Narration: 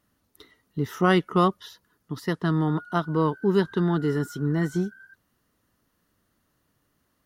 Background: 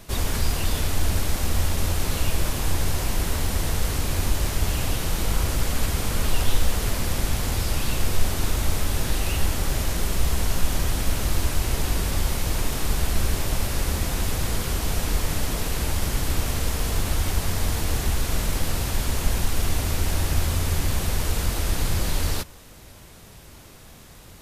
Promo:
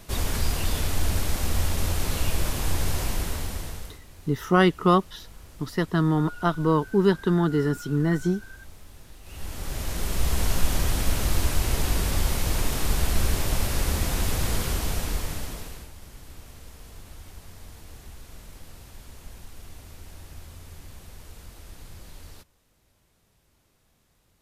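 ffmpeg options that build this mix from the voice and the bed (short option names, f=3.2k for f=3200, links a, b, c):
-filter_complex "[0:a]adelay=3500,volume=1.5dB[a];[1:a]volume=21dB,afade=t=out:st=3.02:d=0.98:silence=0.0841395,afade=t=in:st=9.23:d=1.22:silence=0.0707946,afade=t=out:st=14.6:d=1.3:silence=0.1[b];[a][b]amix=inputs=2:normalize=0"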